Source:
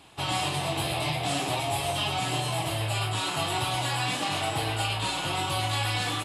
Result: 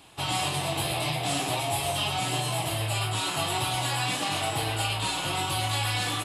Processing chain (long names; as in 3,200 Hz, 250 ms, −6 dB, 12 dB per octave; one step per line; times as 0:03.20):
high-shelf EQ 9,500 Hz +7 dB
hum removal 80.38 Hz, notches 30